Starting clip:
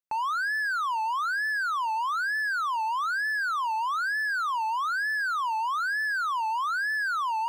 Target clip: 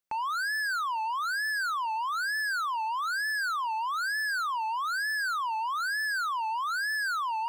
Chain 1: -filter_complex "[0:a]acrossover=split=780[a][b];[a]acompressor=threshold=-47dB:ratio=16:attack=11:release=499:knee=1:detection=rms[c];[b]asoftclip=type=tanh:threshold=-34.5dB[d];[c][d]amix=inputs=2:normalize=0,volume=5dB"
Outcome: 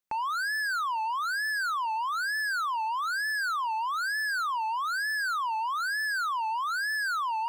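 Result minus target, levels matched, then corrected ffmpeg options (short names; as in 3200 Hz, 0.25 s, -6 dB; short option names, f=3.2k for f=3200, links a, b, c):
compressor: peak gain reduction -5.5 dB
-filter_complex "[0:a]acrossover=split=780[a][b];[a]acompressor=threshold=-53dB:ratio=16:attack=11:release=499:knee=1:detection=rms[c];[b]asoftclip=type=tanh:threshold=-34.5dB[d];[c][d]amix=inputs=2:normalize=0,volume=5dB"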